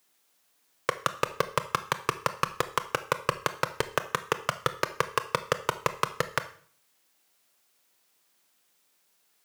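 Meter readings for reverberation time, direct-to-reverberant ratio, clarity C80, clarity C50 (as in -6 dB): 0.50 s, 11.0 dB, 18.5 dB, 14.5 dB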